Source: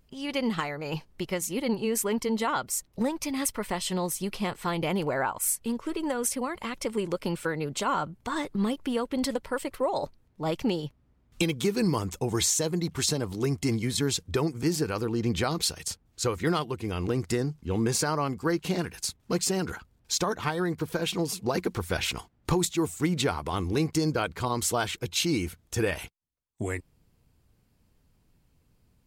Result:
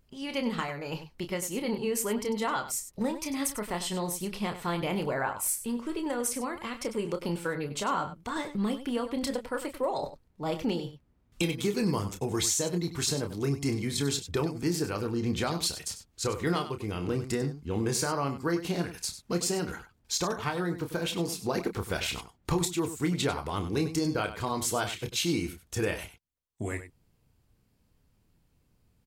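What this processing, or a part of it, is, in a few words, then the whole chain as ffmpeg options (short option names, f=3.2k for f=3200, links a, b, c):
slapback doubling: -filter_complex "[0:a]asplit=3[a][b][c];[b]adelay=29,volume=-8dB[d];[c]adelay=97,volume=-12dB[e];[a][d][e]amix=inputs=3:normalize=0,volume=-3dB"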